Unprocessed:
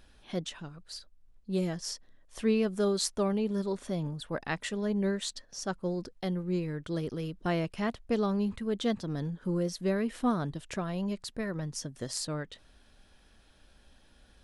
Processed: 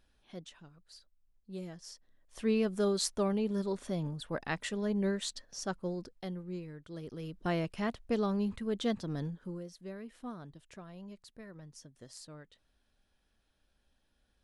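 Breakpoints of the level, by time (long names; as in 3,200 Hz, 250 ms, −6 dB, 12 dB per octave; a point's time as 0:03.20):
0:01.92 −12 dB
0:02.57 −2 dB
0:05.65 −2 dB
0:06.88 −12.5 dB
0:07.43 −2.5 dB
0:09.25 −2.5 dB
0:09.67 −15 dB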